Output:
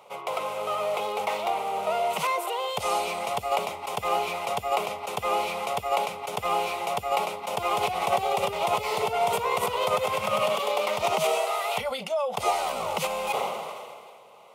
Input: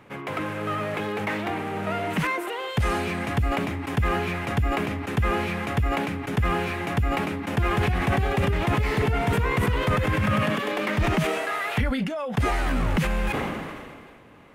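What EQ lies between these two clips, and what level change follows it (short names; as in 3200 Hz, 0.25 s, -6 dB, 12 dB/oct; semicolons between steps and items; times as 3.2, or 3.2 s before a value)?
HPF 450 Hz 12 dB/oct; fixed phaser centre 700 Hz, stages 4; +6.0 dB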